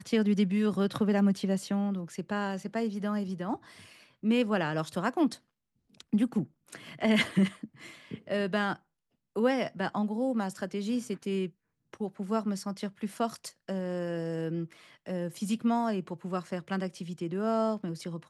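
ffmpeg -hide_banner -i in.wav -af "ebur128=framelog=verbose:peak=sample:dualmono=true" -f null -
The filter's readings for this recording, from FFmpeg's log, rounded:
Integrated loudness:
  I:         -28.1 LUFS
  Threshold: -38.6 LUFS
Loudness range:
  LRA:         4.4 LU
  Threshold: -49.2 LUFS
  LRA low:   -31.7 LUFS
  LRA high:  -27.3 LUFS
Sample peak:
  Peak:      -14.0 dBFS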